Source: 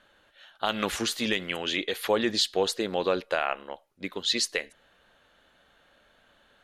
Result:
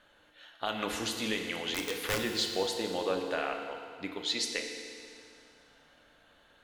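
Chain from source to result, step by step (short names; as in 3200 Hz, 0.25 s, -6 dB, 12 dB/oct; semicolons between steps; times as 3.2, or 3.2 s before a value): in parallel at 0 dB: compressor 16:1, threshold -39 dBFS, peak gain reduction 21 dB; 1.7–2.21 on the sum: wrapped overs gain 15.5 dB; FDN reverb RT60 2.3 s, low-frequency decay 1.05×, high-frequency decay 1×, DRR 3 dB; gain -8 dB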